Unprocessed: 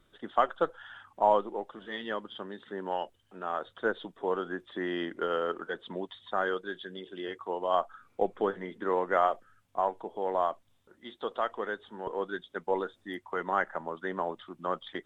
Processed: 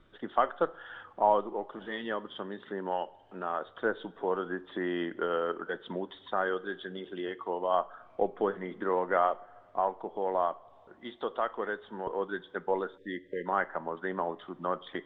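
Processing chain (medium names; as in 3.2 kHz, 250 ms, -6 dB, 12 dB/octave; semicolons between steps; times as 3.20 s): Bessel low-pass 2.8 kHz, order 2; two-slope reverb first 0.5 s, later 2 s, from -16 dB, DRR 16 dB; in parallel at +0.5 dB: compression, threshold -42 dBFS, peak gain reduction 22 dB; on the sum: spectral selection erased 12.97–13.46 s, 590–1600 Hz; trim -1.5 dB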